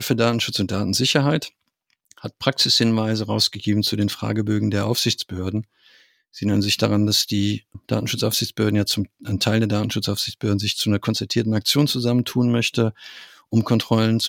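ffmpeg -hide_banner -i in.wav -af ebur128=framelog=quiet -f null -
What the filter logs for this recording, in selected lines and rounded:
Integrated loudness:
  I:         -20.7 LUFS
  Threshold: -31.2 LUFS
Loudness range:
  LRA:         2.1 LU
  Threshold: -41.3 LUFS
  LRA low:   -22.5 LUFS
  LRA high:  -20.3 LUFS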